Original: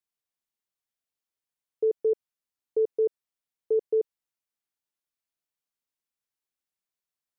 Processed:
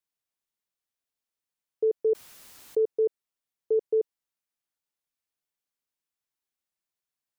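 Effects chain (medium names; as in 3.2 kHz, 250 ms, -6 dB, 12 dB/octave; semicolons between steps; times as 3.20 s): 2.09–2.85 s: level flattener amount 70%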